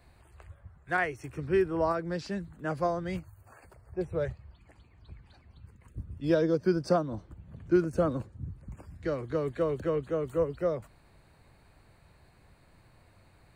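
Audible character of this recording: noise floor -61 dBFS; spectral tilt -4.5 dB/oct

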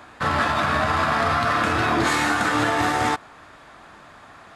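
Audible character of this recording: noise floor -47 dBFS; spectral tilt -4.0 dB/oct

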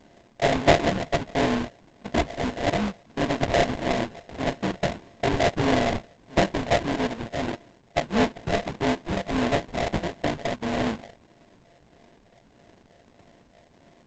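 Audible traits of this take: a buzz of ramps at a fixed pitch in blocks of 64 samples; phasing stages 8, 1.6 Hz, lowest notch 330–2900 Hz; aliases and images of a low sample rate 1300 Hz, jitter 20%; G.722

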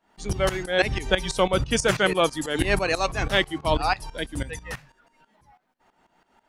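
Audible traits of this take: tremolo saw up 6.1 Hz, depth 85%

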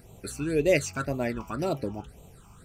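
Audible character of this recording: phasing stages 8, 1.9 Hz, lowest notch 510–1600 Hz

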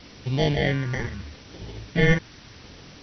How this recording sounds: aliases and images of a low sample rate 1300 Hz, jitter 0%; phasing stages 4, 0.76 Hz, lowest notch 660–1400 Hz; a quantiser's noise floor 8-bit, dither triangular; MP2

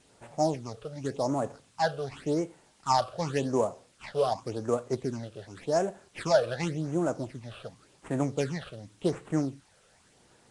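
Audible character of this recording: aliases and images of a low sample rate 6100 Hz, jitter 20%; phasing stages 8, 0.89 Hz, lowest notch 260–4900 Hz; a quantiser's noise floor 10-bit, dither triangular; Nellymoser

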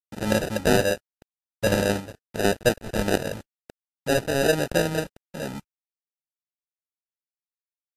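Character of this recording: a quantiser's noise floor 6-bit, dither none; random-step tremolo; aliases and images of a low sample rate 1100 Hz, jitter 0%; Vorbis

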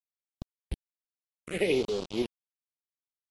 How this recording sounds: tremolo saw up 2.7 Hz, depth 50%; a quantiser's noise floor 6-bit, dither none; phasing stages 4, 0.63 Hz, lowest notch 530–1900 Hz; AC-3

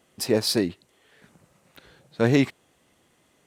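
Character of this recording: noise floor -65 dBFS; spectral tilt -5.0 dB/oct

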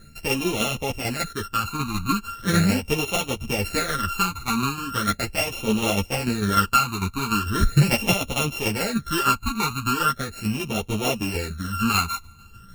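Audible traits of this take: a buzz of ramps at a fixed pitch in blocks of 32 samples; phasing stages 12, 0.39 Hz, lowest notch 550–1600 Hz; tremolo saw down 6.7 Hz, depth 55%; a shimmering, thickened sound

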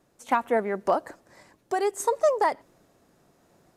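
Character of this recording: random-step tremolo 3.5 Hz

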